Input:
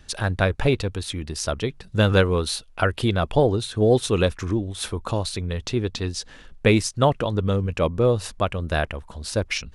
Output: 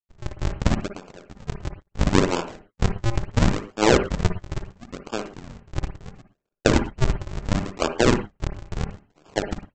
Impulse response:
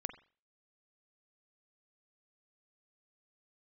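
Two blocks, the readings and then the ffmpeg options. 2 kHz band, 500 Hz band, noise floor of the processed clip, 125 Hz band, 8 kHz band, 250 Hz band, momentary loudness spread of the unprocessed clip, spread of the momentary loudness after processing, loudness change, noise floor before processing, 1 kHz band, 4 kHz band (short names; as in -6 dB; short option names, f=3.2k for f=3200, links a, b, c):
-2.5 dB, -4.5 dB, -77 dBFS, -3.0 dB, -3.0 dB, -0.5 dB, 9 LU, 16 LU, -1.5 dB, -48 dBFS, -1.0 dB, -4.0 dB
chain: -filter_complex "[0:a]agate=range=-33dB:threshold=-38dB:ratio=3:detection=peak,aeval=exprs='0.562*(cos(1*acos(clip(val(0)/0.562,-1,1)))-cos(1*PI/2))+0.282*(cos(4*acos(clip(val(0)/0.562,-1,1)))-cos(4*PI/2))+0.0794*(cos(7*acos(clip(val(0)/0.562,-1,1)))-cos(7*PI/2))':c=same,acrossover=split=250 4600:gain=0.0708 1 0.224[a][b][c];[a][b][c]amix=inputs=3:normalize=0,aresample=16000,acrusher=samples=39:mix=1:aa=0.000001:lfo=1:lforange=62.4:lforate=0.73,aresample=44100[d];[1:a]atrim=start_sample=2205,afade=t=out:st=0.15:d=0.01,atrim=end_sample=7056,asetrate=35280,aresample=44100[e];[d][e]afir=irnorm=-1:irlink=0"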